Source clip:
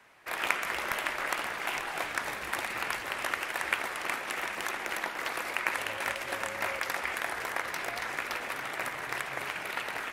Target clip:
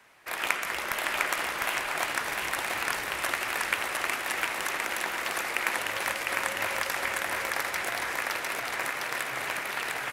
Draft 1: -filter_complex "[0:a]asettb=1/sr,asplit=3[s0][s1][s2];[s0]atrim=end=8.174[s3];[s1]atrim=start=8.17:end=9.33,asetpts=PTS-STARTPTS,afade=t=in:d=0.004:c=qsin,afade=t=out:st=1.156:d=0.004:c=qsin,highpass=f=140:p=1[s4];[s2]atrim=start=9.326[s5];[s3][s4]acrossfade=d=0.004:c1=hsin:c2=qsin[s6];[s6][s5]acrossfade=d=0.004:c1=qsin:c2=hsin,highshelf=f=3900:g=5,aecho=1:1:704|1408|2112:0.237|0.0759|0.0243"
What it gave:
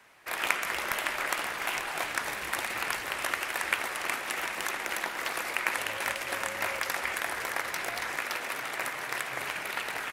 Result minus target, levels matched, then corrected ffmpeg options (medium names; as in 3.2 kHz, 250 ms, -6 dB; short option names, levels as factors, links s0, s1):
echo-to-direct -10.5 dB
-filter_complex "[0:a]asettb=1/sr,asplit=3[s0][s1][s2];[s0]atrim=end=8.174[s3];[s1]atrim=start=8.17:end=9.33,asetpts=PTS-STARTPTS,afade=t=in:d=0.004:c=qsin,afade=t=out:st=1.156:d=0.004:c=qsin,highpass=f=140:p=1[s4];[s2]atrim=start=9.326[s5];[s3][s4]acrossfade=d=0.004:c1=hsin:c2=qsin[s6];[s6][s5]acrossfade=d=0.004:c1=qsin:c2=hsin,highshelf=f=3900:g=5,aecho=1:1:704|1408|2112|2816:0.794|0.254|0.0813|0.026"